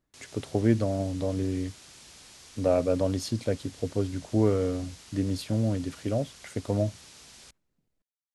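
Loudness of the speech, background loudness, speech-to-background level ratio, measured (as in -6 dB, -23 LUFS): -29.0 LUFS, -48.5 LUFS, 19.5 dB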